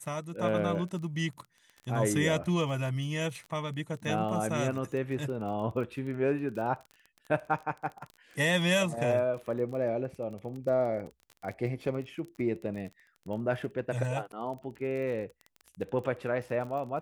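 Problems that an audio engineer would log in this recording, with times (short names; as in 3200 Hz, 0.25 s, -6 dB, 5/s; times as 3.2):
crackle 27/s -38 dBFS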